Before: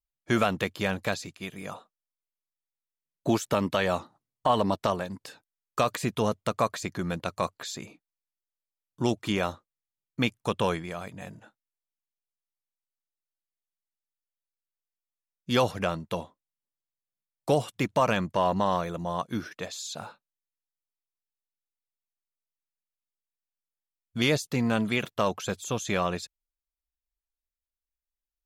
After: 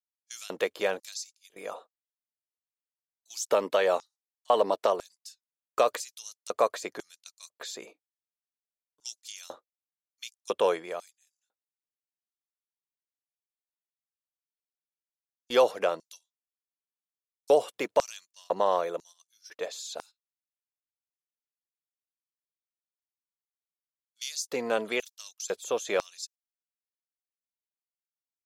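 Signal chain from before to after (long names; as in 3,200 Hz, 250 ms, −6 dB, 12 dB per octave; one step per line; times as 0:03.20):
auto-filter high-pass square 1 Hz 470–5,600 Hz
noise gate −46 dBFS, range −13 dB
level −2.5 dB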